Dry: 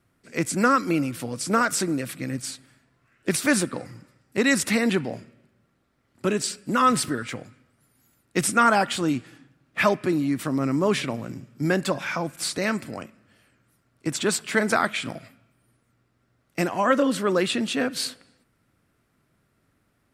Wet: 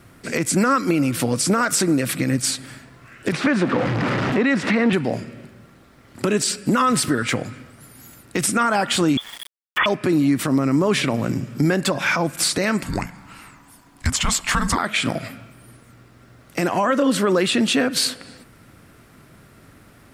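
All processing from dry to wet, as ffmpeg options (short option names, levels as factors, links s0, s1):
-filter_complex "[0:a]asettb=1/sr,asplit=3[s0][s1][s2];[s0]atrim=end=3.324[s3];[s1]atrim=start=3.32:end=4.93,asetpts=PTS-STARTPTS,afade=t=in:d=0.004:c=qsin,afade=t=out:st=1.606:d=0.004:c=qsin,aeval=exprs='val(0)+0.5*0.0531*sgn(val(0))':c=same,highpass=130,lowpass=2400[s4];[s2]atrim=start=4.926[s5];[s3][s4]acrossfade=d=0.004:c1=hsin:c2=qsin[s6];[s6][s5]acrossfade=d=0.004:c1=qsin:c2=hsin,asettb=1/sr,asplit=3[s7][s8][s9];[s7]atrim=end=9.174[s10];[s8]atrim=start=9.17:end=9.86,asetpts=PTS-STARTPTS,afade=t=in:d=0.004:c=qsin,afade=t=out:st=0.686:d=0.004:c=qsin,lowpass=f=3100:t=q:w=0.5098,lowpass=f=3100:t=q:w=0.6013,lowpass=f=3100:t=q:w=0.9,lowpass=f=3100:t=q:w=2.563,afreqshift=-3600,aeval=exprs='val(0)*gte(abs(val(0)),0.00398)':c=same[s11];[s9]atrim=start=9.856[s12];[s10][s11]acrossfade=d=0.004:c1=hsin:c2=qsin[s13];[s13][s12]acrossfade=d=0.004:c1=qsin:c2=hsin,asettb=1/sr,asplit=3[s14][s15][s16];[s14]atrim=end=12.834[s17];[s15]atrim=start=12.83:end=14.78,asetpts=PTS-STARTPTS,afade=t=in:d=0.004:c=qsin,afade=t=out:st=1.946:d=0.004:c=qsin,lowshelf=f=270:g=-8.5,bandreject=f=4300:w=19,afreqshift=-400[s18];[s16]atrim=start=14.776[s19];[s17][s18]acrossfade=d=0.004:c1=hsin:c2=qsin[s20];[s20][s19]acrossfade=d=0.004:c1=qsin:c2=hsin,acompressor=threshold=0.00891:ratio=2.5,alimiter=level_in=25.1:limit=0.891:release=50:level=0:latency=1,volume=0.376"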